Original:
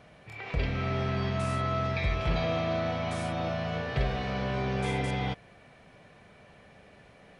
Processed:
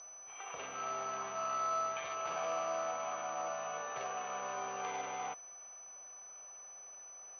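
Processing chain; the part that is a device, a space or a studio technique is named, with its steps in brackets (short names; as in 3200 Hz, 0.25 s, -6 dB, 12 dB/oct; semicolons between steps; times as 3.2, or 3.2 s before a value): toy sound module (decimation joined by straight lines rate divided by 8×; pulse-width modulation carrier 6000 Hz; speaker cabinet 690–4900 Hz, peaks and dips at 780 Hz +4 dB, 1200 Hz +9 dB, 1900 Hz -6 dB, 2800 Hz +6 dB, 4600 Hz +8 dB); gain -4.5 dB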